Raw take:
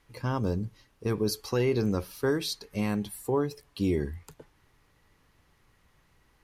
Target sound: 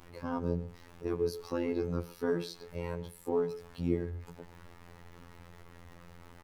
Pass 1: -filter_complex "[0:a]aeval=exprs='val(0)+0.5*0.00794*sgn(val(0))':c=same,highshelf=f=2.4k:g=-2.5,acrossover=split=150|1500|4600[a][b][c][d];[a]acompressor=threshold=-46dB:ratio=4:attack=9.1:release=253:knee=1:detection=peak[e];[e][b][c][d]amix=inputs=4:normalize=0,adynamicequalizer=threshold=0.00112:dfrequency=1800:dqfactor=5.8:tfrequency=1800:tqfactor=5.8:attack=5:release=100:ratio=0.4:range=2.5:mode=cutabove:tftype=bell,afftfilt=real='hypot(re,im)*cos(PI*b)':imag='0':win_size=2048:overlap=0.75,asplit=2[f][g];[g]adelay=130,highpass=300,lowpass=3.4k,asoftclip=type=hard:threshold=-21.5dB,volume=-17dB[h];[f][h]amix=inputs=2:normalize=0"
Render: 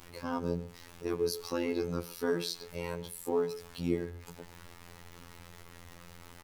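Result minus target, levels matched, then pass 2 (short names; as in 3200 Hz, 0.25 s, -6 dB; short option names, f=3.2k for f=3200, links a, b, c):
4000 Hz band +8.0 dB; compressor: peak gain reduction +7 dB
-filter_complex "[0:a]aeval=exprs='val(0)+0.5*0.00794*sgn(val(0))':c=same,highshelf=f=2.4k:g=-13.5,acrossover=split=150|1500|4600[a][b][c][d];[a]acompressor=threshold=-36.5dB:ratio=4:attack=9.1:release=253:knee=1:detection=peak[e];[e][b][c][d]amix=inputs=4:normalize=0,adynamicequalizer=threshold=0.00112:dfrequency=1800:dqfactor=5.8:tfrequency=1800:tqfactor=5.8:attack=5:release=100:ratio=0.4:range=2.5:mode=cutabove:tftype=bell,afftfilt=real='hypot(re,im)*cos(PI*b)':imag='0':win_size=2048:overlap=0.75,asplit=2[f][g];[g]adelay=130,highpass=300,lowpass=3.4k,asoftclip=type=hard:threshold=-21.5dB,volume=-17dB[h];[f][h]amix=inputs=2:normalize=0"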